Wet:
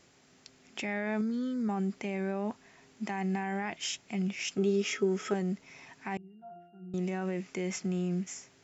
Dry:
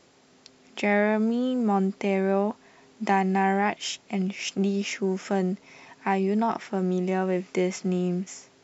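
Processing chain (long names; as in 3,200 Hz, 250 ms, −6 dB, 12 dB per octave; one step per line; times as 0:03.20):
octave-band graphic EQ 250/500/1,000/4,000 Hz −4/−6/−5/−4 dB
brickwall limiter −24.5 dBFS, peak gain reduction 10 dB
0:01.21–0:01.69: phaser with its sweep stopped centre 2,800 Hz, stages 6
0:04.57–0:05.34: hollow resonant body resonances 420/1,300/3,300 Hz, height 16 dB, ringing for 85 ms
0:06.17–0:06.94: resonances in every octave F, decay 0.62 s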